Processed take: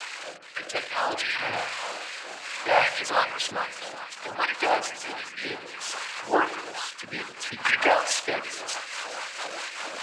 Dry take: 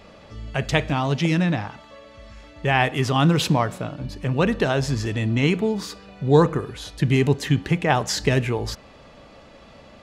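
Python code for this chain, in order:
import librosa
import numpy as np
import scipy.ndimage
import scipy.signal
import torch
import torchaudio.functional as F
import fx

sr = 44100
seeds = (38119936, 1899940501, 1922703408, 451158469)

y = fx.delta_mod(x, sr, bps=64000, step_db=-24.0)
y = fx.spec_gate(y, sr, threshold_db=-30, keep='strong')
y = fx.filter_lfo_highpass(y, sr, shape='sine', hz=2.5, low_hz=720.0, high_hz=1700.0, q=1.7)
y = 10.0 ** (-9.5 / 20.0) * np.tanh(y / 10.0 ** (-9.5 / 20.0))
y = fx.noise_vocoder(y, sr, seeds[0], bands=8)
y = fx.rotary_switch(y, sr, hz=0.6, then_hz=5.0, switch_at_s=8.22)
y = fx.doubler(y, sr, ms=45.0, db=-2.5, at=(1.34, 2.69))
y = fx.echo_split(y, sr, split_hz=800.0, low_ms=81, high_ms=418, feedback_pct=52, wet_db=-12.5)
y = fx.band_squash(y, sr, depth_pct=100, at=(7.65, 8.11))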